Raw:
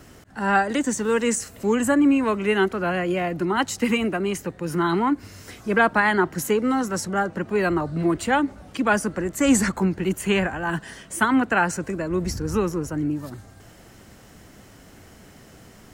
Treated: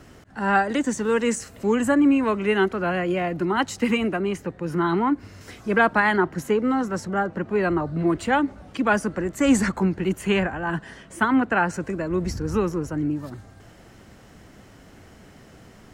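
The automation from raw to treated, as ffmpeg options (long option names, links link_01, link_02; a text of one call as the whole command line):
ffmpeg -i in.wav -af "asetnsamples=nb_out_samples=441:pad=0,asendcmd='4.2 lowpass f 2500;5.41 lowpass f 5800;6.16 lowpass f 2300;8.07 lowpass f 4300;10.43 lowpass f 2400;11.74 lowpass f 4400',lowpass=frequency=4800:poles=1" out.wav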